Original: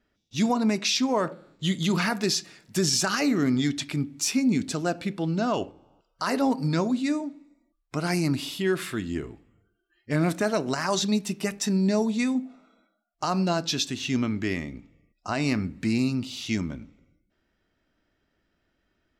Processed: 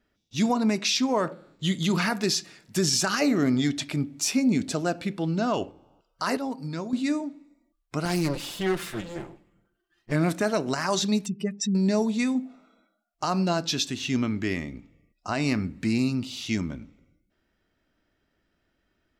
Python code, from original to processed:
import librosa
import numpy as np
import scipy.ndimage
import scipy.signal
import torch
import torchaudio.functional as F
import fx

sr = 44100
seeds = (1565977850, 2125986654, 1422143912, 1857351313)

y = fx.peak_eq(x, sr, hz=620.0, db=6.5, octaves=0.67, at=(3.21, 4.84))
y = fx.lower_of_two(y, sr, delay_ms=5.8, at=(8.05, 10.12))
y = fx.spec_expand(y, sr, power=2.1, at=(11.26, 11.75))
y = fx.edit(y, sr, fx.clip_gain(start_s=6.37, length_s=0.56, db=-8.0), tone=tone)